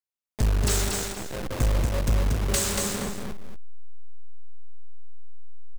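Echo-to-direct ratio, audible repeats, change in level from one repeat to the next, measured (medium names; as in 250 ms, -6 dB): -3.0 dB, 2, -10.5 dB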